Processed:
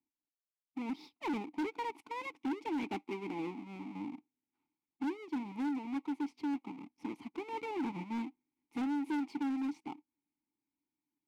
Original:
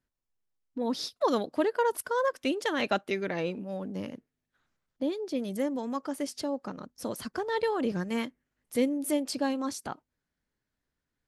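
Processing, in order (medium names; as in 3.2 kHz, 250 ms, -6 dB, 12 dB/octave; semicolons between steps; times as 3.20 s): square wave that keeps the level; vowel filter u; hard clipper -33 dBFS, distortion -6 dB; trim +1 dB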